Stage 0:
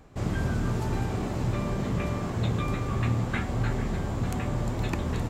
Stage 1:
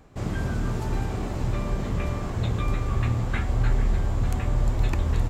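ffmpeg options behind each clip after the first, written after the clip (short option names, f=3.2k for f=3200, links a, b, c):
-af "asubboost=boost=5:cutoff=78"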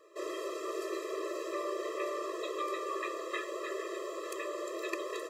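-af "afftfilt=real='re*eq(mod(floor(b*sr/1024/340),2),1)':imag='im*eq(mod(floor(b*sr/1024/340),2),1)':win_size=1024:overlap=0.75,volume=1dB"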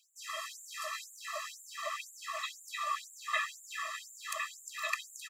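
-filter_complex "[0:a]asuperstop=centerf=1000:order=4:qfactor=6.1,asplit=2[a][b];[b]adelay=370,highpass=300,lowpass=3.4k,asoftclip=type=hard:threshold=-30.5dB,volume=-6dB[c];[a][c]amix=inputs=2:normalize=0,afftfilt=real='re*gte(b*sr/1024,600*pow(6800/600,0.5+0.5*sin(2*PI*2*pts/sr)))':imag='im*gte(b*sr/1024,600*pow(6800/600,0.5+0.5*sin(2*PI*2*pts/sr)))':win_size=1024:overlap=0.75,volume=6dB"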